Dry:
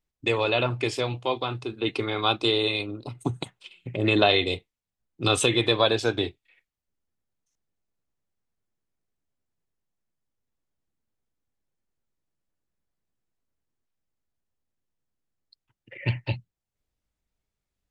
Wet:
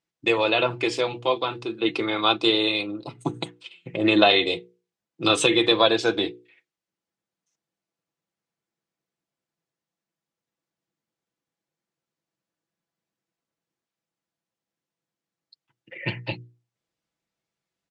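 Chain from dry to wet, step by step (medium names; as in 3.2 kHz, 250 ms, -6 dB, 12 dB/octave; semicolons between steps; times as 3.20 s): band-pass 160–7400 Hz; hum notches 60/120/180/240/300/360/420/480 Hz; comb 6 ms, depth 45%; trim +2.5 dB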